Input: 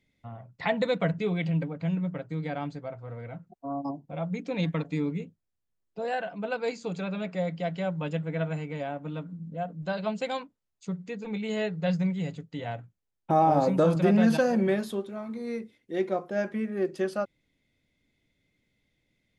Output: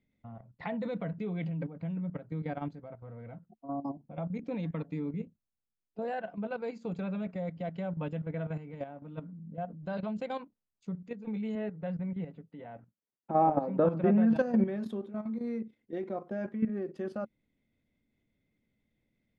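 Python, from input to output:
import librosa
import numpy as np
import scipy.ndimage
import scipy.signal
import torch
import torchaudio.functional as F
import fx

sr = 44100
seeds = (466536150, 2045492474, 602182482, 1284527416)

y = fx.bandpass_edges(x, sr, low_hz=180.0, high_hz=2500.0, at=(11.55, 14.36))
y = fx.lowpass(y, sr, hz=1400.0, slope=6)
y = fx.peak_eq(y, sr, hz=220.0, db=7.0, octaves=0.27)
y = fx.level_steps(y, sr, step_db=11)
y = y * 10.0 ** (-1.0 / 20.0)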